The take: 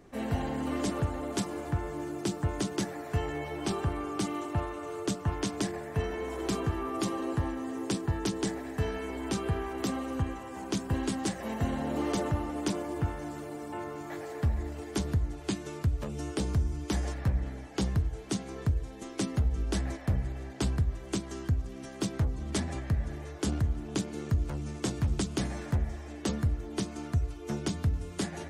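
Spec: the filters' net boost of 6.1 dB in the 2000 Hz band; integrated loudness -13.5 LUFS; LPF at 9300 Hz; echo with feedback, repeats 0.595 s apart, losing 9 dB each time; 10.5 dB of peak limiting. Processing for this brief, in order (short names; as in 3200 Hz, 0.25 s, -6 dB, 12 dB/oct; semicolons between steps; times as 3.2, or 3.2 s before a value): LPF 9300 Hz; bell 2000 Hz +7.5 dB; limiter -27 dBFS; feedback echo 0.595 s, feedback 35%, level -9 dB; gain +22.5 dB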